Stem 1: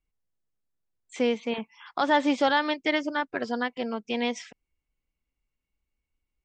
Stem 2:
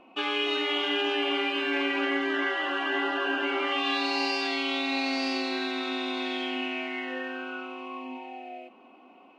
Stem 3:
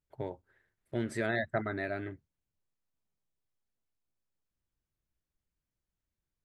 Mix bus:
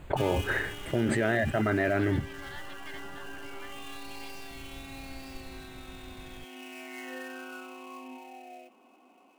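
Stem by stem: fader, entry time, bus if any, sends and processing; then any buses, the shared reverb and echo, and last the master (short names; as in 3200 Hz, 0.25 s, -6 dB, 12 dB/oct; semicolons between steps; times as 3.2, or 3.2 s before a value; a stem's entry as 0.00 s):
-18.5 dB, 0.00 s, no send, HPF 1400 Hz
-6.0 dB, 0.00 s, no send, switching dead time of 0.065 ms; auto duck -10 dB, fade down 0.80 s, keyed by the third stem
+1.5 dB, 0.00 s, no send, running mean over 8 samples; fast leveller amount 100%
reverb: off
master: dry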